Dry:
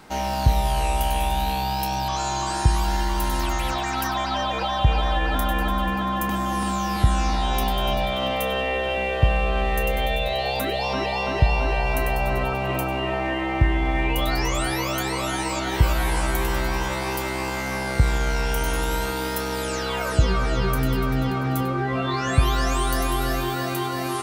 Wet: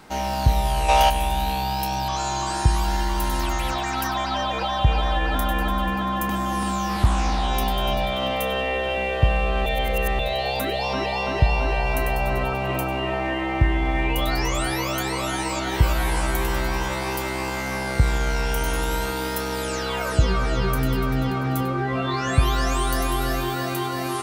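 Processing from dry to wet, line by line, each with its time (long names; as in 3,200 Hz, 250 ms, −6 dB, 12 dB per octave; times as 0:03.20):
0:00.89–0:01.10: gain on a spectral selection 440–6,900 Hz +10 dB
0:06.89–0:07.48: highs frequency-modulated by the lows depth 0.68 ms
0:09.66–0:10.19: reverse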